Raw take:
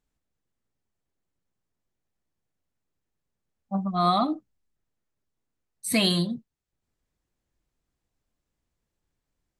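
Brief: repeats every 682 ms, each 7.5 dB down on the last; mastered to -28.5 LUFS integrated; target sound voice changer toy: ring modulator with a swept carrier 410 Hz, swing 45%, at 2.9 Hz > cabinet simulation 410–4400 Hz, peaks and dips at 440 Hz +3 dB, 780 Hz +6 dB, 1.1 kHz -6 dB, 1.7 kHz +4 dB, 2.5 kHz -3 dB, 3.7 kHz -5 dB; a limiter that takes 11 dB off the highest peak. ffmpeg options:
-af "alimiter=limit=0.0841:level=0:latency=1,aecho=1:1:682|1364|2046|2728|3410:0.422|0.177|0.0744|0.0312|0.0131,aeval=exprs='val(0)*sin(2*PI*410*n/s+410*0.45/2.9*sin(2*PI*2.9*n/s))':c=same,highpass=410,equalizer=f=440:t=q:w=4:g=3,equalizer=f=780:t=q:w=4:g=6,equalizer=f=1100:t=q:w=4:g=-6,equalizer=f=1700:t=q:w=4:g=4,equalizer=f=2500:t=q:w=4:g=-3,equalizer=f=3700:t=q:w=4:g=-5,lowpass=f=4400:w=0.5412,lowpass=f=4400:w=1.3066,volume=2.82"

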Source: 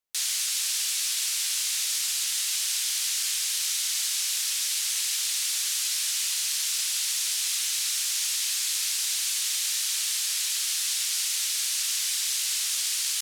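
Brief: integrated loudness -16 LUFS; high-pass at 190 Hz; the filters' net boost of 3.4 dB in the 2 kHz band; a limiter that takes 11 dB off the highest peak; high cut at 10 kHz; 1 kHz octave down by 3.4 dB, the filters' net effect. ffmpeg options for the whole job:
-af "highpass=190,lowpass=10000,equalizer=f=1000:t=o:g=-8,equalizer=f=2000:t=o:g=6,volume=6.31,alimiter=limit=0.316:level=0:latency=1"

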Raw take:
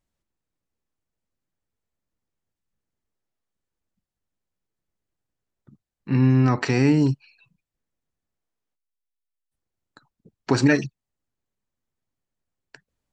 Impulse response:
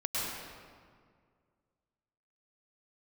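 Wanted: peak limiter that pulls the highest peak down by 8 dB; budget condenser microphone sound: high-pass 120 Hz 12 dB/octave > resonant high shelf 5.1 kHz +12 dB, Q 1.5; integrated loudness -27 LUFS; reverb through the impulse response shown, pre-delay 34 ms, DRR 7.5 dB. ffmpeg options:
-filter_complex "[0:a]alimiter=limit=0.2:level=0:latency=1,asplit=2[s0][s1];[1:a]atrim=start_sample=2205,adelay=34[s2];[s1][s2]afir=irnorm=-1:irlink=0,volume=0.188[s3];[s0][s3]amix=inputs=2:normalize=0,highpass=120,highshelf=f=5100:t=q:w=1.5:g=12,volume=0.794"

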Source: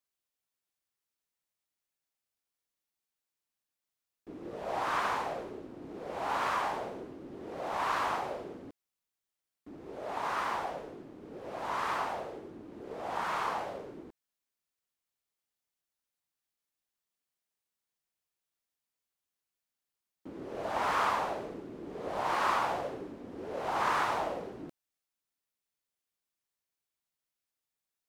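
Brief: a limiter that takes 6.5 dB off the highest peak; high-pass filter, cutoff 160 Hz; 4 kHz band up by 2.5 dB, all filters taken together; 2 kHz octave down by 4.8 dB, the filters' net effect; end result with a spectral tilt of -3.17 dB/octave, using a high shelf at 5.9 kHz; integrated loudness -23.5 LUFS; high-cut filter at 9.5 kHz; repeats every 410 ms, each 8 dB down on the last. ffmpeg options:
-af "highpass=160,lowpass=9500,equalizer=f=2000:t=o:g=-8,equalizer=f=4000:t=o:g=5,highshelf=f=5900:g=3.5,alimiter=level_in=1.06:limit=0.0631:level=0:latency=1,volume=0.944,aecho=1:1:410|820|1230|1640|2050:0.398|0.159|0.0637|0.0255|0.0102,volume=4.73"

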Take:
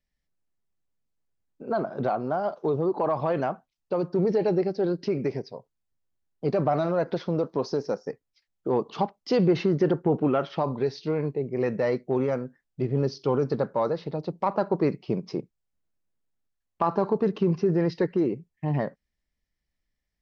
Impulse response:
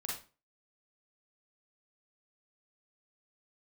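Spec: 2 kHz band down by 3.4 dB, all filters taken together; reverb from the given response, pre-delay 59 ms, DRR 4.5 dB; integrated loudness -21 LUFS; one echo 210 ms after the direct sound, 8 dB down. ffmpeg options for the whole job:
-filter_complex "[0:a]equalizer=f=2000:t=o:g=-4.5,aecho=1:1:210:0.398,asplit=2[s0][s1];[1:a]atrim=start_sample=2205,adelay=59[s2];[s1][s2]afir=irnorm=-1:irlink=0,volume=0.531[s3];[s0][s3]amix=inputs=2:normalize=0,volume=1.68"

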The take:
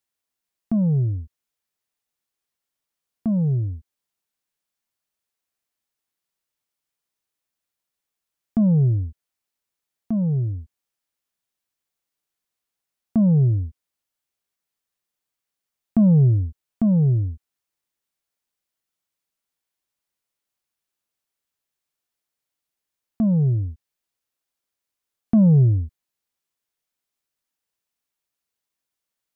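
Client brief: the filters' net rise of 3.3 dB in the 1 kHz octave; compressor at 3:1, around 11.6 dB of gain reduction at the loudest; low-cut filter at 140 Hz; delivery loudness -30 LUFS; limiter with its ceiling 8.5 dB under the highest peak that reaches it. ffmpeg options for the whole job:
-af "highpass=140,equalizer=f=1000:t=o:g=5,acompressor=threshold=0.0355:ratio=3,volume=1.41,alimiter=limit=0.0891:level=0:latency=1"

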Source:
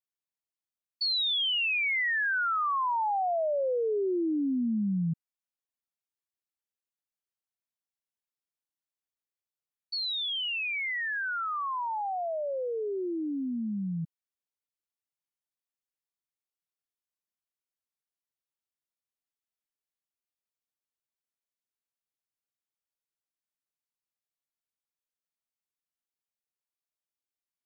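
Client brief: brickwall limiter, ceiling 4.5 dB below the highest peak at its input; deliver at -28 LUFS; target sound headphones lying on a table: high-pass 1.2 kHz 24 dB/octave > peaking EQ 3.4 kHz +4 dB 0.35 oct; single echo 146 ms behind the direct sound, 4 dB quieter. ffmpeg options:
-af "alimiter=level_in=1.88:limit=0.0631:level=0:latency=1,volume=0.531,highpass=f=1200:w=0.5412,highpass=f=1200:w=1.3066,equalizer=f=3400:t=o:w=0.35:g=4,aecho=1:1:146:0.631,volume=1.06"

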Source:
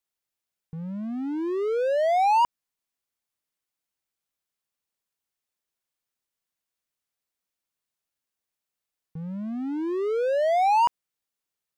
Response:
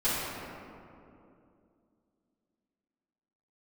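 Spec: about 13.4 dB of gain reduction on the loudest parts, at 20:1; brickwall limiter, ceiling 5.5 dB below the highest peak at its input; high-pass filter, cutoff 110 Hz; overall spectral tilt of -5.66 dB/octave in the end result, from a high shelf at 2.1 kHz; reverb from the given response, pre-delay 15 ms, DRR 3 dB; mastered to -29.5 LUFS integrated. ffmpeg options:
-filter_complex "[0:a]highpass=110,highshelf=f=2100:g=5.5,acompressor=threshold=0.0316:ratio=20,alimiter=level_in=2.82:limit=0.0631:level=0:latency=1,volume=0.355,asplit=2[s0][s1];[1:a]atrim=start_sample=2205,adelay=15[s2];[s1][s2]afir=irnorm=-1:irlink=0,volume=0.188[s3];[s0][s3]amix=inputs=2:normalize=0,volume=2.11"

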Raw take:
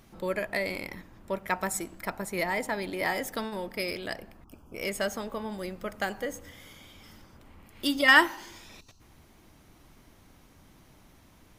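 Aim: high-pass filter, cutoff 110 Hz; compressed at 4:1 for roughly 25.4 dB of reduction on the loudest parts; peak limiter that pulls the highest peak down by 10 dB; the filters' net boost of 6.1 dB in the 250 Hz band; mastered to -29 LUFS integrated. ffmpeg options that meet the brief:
-af "highpass=110,equalizer=f=250:t=o:g=8,acompressor=threshold=0.00501:ratio=4,volume=12.6,alimiter=limit=0.133:level=0:latency=1"

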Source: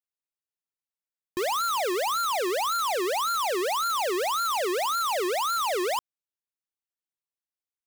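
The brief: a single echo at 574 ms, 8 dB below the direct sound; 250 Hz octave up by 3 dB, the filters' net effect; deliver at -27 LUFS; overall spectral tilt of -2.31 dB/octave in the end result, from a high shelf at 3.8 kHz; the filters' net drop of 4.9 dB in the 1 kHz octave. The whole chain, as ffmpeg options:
-af "equalizer=f=250:t=o:g=7.5,equalizer=f=1000:t=o:g=-6.5,highshelf=f=3800:g=-5.5,aecho=1:1:574:0.398,volume=1.19"

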